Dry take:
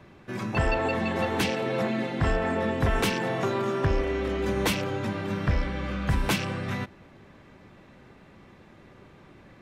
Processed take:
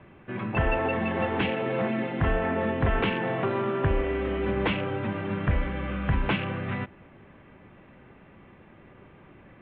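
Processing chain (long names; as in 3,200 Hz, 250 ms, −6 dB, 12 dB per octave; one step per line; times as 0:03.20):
Butterworth low-pass 3,200 Hz 48 dB per octave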